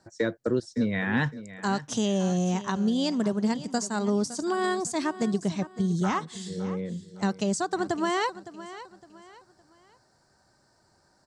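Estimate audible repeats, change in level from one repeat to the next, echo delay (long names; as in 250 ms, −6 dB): 3, −9.5 dB, 561 ms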